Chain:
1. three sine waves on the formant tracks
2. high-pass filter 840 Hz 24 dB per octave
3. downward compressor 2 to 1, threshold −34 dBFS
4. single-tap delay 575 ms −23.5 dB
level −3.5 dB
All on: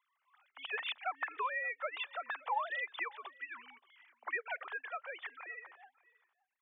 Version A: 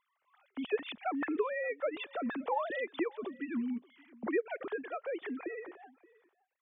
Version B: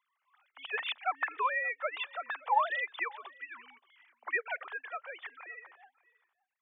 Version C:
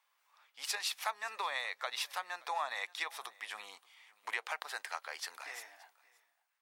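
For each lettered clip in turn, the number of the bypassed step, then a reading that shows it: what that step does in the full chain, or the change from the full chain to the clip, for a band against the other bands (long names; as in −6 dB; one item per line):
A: 2, 250 Hz band +31.5 dB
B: 3, change in crest factor +4.0 dB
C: 1, change in crest factor +6.0 dB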